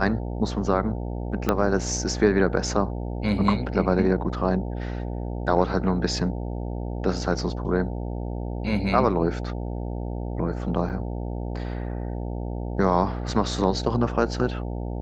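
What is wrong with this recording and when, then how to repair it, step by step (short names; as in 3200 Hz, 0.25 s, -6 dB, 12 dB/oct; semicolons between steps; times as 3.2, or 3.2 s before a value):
buzz 60 Hz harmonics 15 -30 dBFS
1.49 pop -8 dBFS
10.89–10.9 gap 8.2 ms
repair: de-click; de-hum 60 Hz, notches 15; interpolate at 10.89, 8.2 ms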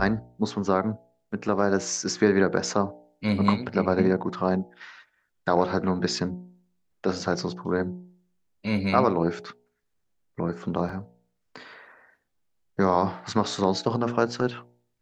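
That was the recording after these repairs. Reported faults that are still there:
1.49 pop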